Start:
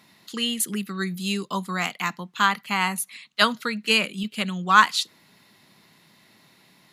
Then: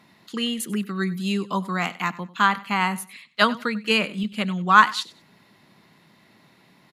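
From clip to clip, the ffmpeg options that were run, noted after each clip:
ffmpeg -i in.wav -af "highshelf=frequency=3100:gain=-10.5,aecho=1:1:95|190:0.112|0.0281,volume=3dB" out.wav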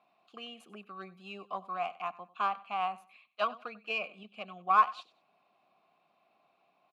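ffmpeg -i in.wav -filter_complex "[0:a]aeval=exprs='0.891*(cos(1*acos(clip(val(0)/0.891,-1,1)))-cos(1*PI/2))+0.0631*(cos(4*acos(clip(val(0)/0.891,-1,1)))-cos(4*PI/2))+0.0316*(cos(8*acos(clip(val(0)/0.891,-1,1)))-cos(8*PI/2))':channel_layout=same,asplit=3[link_01][link_02][link_03];[link_01]bandpass=frequency=730:width_type=q:width=8,volume=0dB[link_04];[link_02]bandpass=frequency=1090:width_type=q:width=8,volume=-6dB[link_05];[link_03]bandpass=frequency=2440:width_type=q:width=8,volume=-9dB[link_06];[link_04][link_05][link_06]amix=inputs=3:normalize=0,volume=-1dB" out.wav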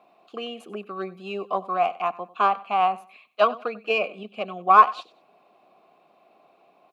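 ffmpeg -i in.wav -af "equalizer=frequency=420:width=0.88:gain=10.5,volume=7.5dB" out.wav

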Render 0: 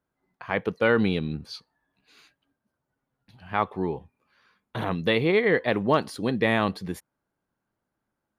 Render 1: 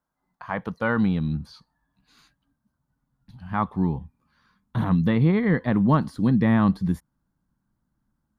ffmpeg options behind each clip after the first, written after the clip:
ffmpeg -i in.wav -filter_complex "[0:a]equalizer=frequency=100:width_type=o:width=0.67:gain=-8,equalizer=frequency=400:width_type=o:width=0.67:gain=-9,equalizer=frequency=1000:width_type=o:width=0.67:gain=5,equalizer=frequency=2500:width_type=o:width=0.67:gain=-8,acrossover=split=2500[link_01][link_02];[link_02]acompressor=threshold=-47dB:ratio=4:attack=1:release=60[link_03];[link_01][link_03]amix=inputs=2:normalize=0,asubboost=boost=7.5:cutoff=230" out.wav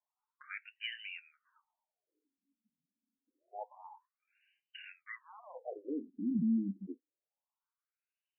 ffmpeg -i in.wav -af "flanger=delay=0.8:depth=9.9:regen=-40:speed=0.59:shape=triangular,aexciter=amount=16:drive=7.6:freq=2800,afftfilt=real='re*between(b*sr/1024,240*pow(2200/240,0.5+0.5*sin(2*PI*0.27*pts/sr))/1.41,240*pow(2200/240,0.5+0.5*sin(2*PI*0.27*pts/sr))*1.41)':imag='im*between(b*sr/1024,240*pow(2200/240,0.5+0.5*sin(2*PI*0.27*pts/sr))/1.41,240*pow(2200/240,0.5+0.5*sin(2*PI*0.27*pts/sr))*1.41)':win_size=1024:overlap=0.75,volume=-6.5dB" out.wav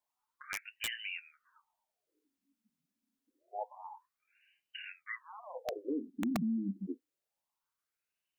ffmpeg -i in.wav -af "acompressor=threshold=-35dB:ratio=12,aeval=exprs='(mod(37.6*val(0)+1,2)-1)/37.6':channel_layout=same,volume=4.5dB" out.wav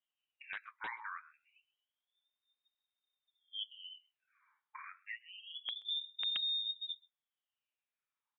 ffmpeg -i in.wav -filter_complex "[0:a]lowpass=frequency=3300:width_type=q:width=0.5098,lowpass=frequency=3300:width_type=q:width=0.6013,lowpass=frequency=3300:width_type=q:width=0.9,lowpass=frequency=3300:width_type=q:width=2.563,afreqshift=-3900,asplit=2[link_01][link_02];[link_02]adelay=130,highpass=300,lowpass=3400,asoftclip=type=hard:threshold=-29.5dB,volume=-23dB[link_03];[link_01][link_03]amix=inputs=2:normalize=0,volume=-3dB" out.wav

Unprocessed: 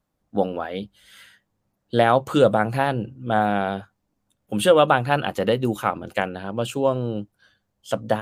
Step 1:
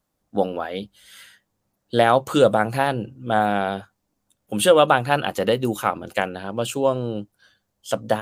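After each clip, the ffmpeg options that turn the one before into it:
ffmpeg -i in.wav -af "bass=frequency=250:gain=-3,treble=frequency=4000:gain=5,volume=1dB" out.wav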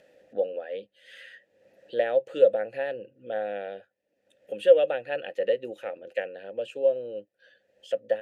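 ffmpeg -i in.wav -filter_complex "[0:a]acompressor=mode=upward:threshold=-21dB:ratio=2.5,asplit=3[link_01][link_02][link_03];[link_01]bandpass=frequency=530:width_type=q:width=8,volume=0dB[link_04];[link_02]bandpass=frequency=1840:width_type=q:width=8,volume=-6dB[link_05];[link_03]bandpass=frequency=2480:width_type=q:width=8,volume=-9dB[link_06];[link_04][link_05][link_06]amix=inputs=3:normalize=0" out.wav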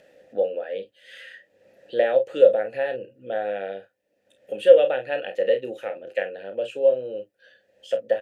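ffmpeg -i in.wav -af "aecho=1:1:31|48:0.376|0.2,volume=3.5dB" out.wav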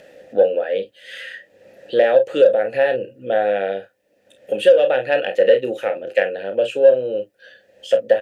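ffmpeg -i in.wav -filter_complex "[0:a]asplit=2[link_01][link_02];[link_02]asoftclip=type=tanh:threshold=-18.5dB,volume=-6.5dB[link_03];[link_01][link_03]amix=inputs=2:normalize=0,alimiter=limit=-9.5dB:level=0:latency=1:release=324,volume=6dB" out.wav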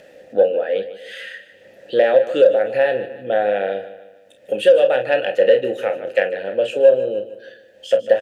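ffmpeg -i in.wav -af "aecho=1:1:151|302|453|604:0.2|0.0898|0.0404|0.0182" out.wav

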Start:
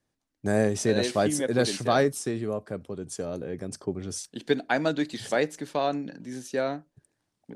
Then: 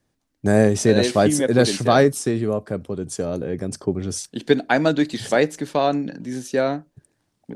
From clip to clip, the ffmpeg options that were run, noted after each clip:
ffmpeg -i in.wav -af "lowshelf=frequency=390:gain=3.5,volume=6dB" out.wav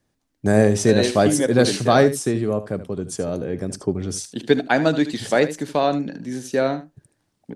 ffmpeg -i in.wav -af "aecho=1:1:76:0.211" out.wav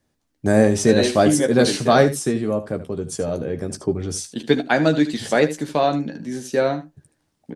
ffmpeg -i in.wav -filter_complex "[0:a]asplit=2[link_01][link_02];[link_02]adelay=13,volume=-7.5dB[link_03];[link_01][link_03]amix=inputs=2:normalize=0" out.wav

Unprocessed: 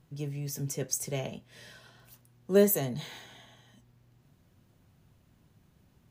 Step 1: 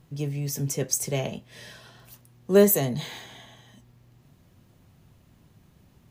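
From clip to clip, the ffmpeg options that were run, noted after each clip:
ffmpeg -i in.wav -filter_complex "[0:a]bandreject=frequency=1500:width=20,asplit=2[link_01][link_02];[link_02]asoftclip=type=tanh:threshold=-20.5dB,volume=-8.5dB[link_03];[link_01][link_03]amix=inputs=2:normalize=0,volume=3.5dB" out.wav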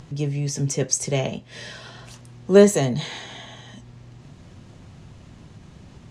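ffmpeg -i in.wav -filter_complex "[0:a]lowpass=frequency=8000:width=0.5412,lowpass=frequency=8000:width=1.3066,asplit=2[link_01][link_02];[link_02]acompressor=mode=upward:threshold=-31dB:ratio=2.5,volume=-3dB[link_03];[link_01][link_03]amix=inputs=2:normalize=0" out.wav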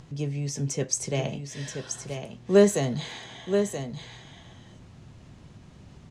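ffmpeg -i in.wav -af "aecho=1:1:978:0.447,volume=-5dB" out.wav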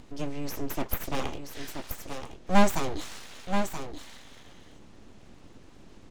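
ffmpeg -i in.wav -af "aeval=exprs='abs(val(0))':channel_layout=same" out.wav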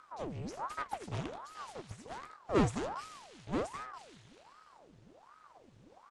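ffmpeg -i in.wav -af "aresample=22050,aresample=44100,aeval=exprs='val(0)*sin(2*PI*690*n/s+690*0.85/1.3*sin(2*PI*1.3*n/s))':channel_layout=same,volume=-8dB" out.wav

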